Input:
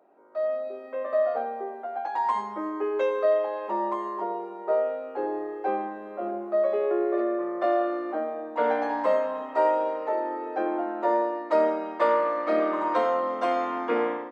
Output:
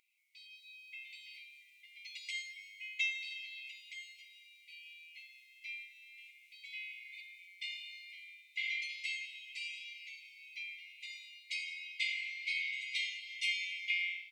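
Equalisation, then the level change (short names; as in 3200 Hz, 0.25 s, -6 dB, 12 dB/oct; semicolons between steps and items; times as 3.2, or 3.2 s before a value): brick-wall FIR high-pass 2000 Hz; +9.0 dB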